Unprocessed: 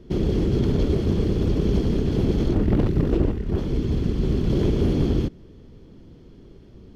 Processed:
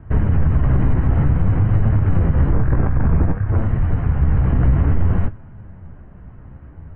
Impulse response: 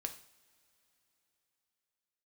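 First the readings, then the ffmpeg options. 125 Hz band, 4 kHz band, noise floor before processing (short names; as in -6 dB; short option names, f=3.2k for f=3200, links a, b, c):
+7.5 dB, under -10 dB, -47 dBFS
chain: -filter_complex "[0:a]highpass=f=230:t=q:w=0.5412,highpass=f=230:t=q:w=1.307,lowpass=f=2.1k:t=q:w=0.5176,lowpass=f=2.1k:t=q:w=0.7071,lowpass=f=2.1k:t=q:w=1.932,afreqshift=-300,asplit=2[a][b];[1:a]atrim=start_sample=2205[c];[b][c]afir=irnorm=-1:irlink=0,volume=-7dB[d];[a][d]amix=inputs=2:normalize=0,flanger=delay=9:depth=7.1:regen=44:speed=0.55:shape=sinusoidal,alimiter=level_in=22dB:limit=-1dB:release=50:level=0:latency=1,volume=-6.5dB"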